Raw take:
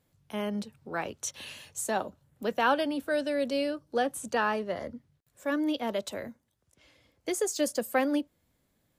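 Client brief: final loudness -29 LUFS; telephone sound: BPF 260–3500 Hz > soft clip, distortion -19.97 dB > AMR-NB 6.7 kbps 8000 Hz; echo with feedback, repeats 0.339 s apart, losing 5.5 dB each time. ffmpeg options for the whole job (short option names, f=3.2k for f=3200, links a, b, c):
-af "highpass=260,lowpass=3.5k,aecho=1:1:339|678|1017|1356|1695|2034|2373:0.531|0.281|0.149|0.079|0.0419|0.0222|0.0118,asoftclip=threshold=-18.5dB,volume=4.5dB" -ar 8000 -c:a libopencore_amrnb -b:a 6700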